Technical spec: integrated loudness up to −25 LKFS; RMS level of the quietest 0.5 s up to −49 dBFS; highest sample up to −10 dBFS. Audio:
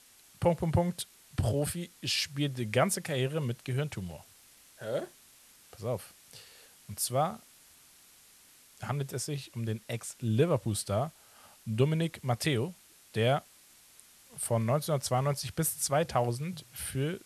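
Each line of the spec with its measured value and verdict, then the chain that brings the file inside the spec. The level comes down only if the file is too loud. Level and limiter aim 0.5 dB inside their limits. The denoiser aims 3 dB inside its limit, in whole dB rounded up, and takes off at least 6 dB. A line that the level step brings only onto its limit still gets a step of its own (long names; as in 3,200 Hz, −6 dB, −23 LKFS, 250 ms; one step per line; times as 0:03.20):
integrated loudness −32.0 LKFS: in spec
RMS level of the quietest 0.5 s −59 dBFS: in spec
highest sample −13.0 dBFS: in spec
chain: no processing needed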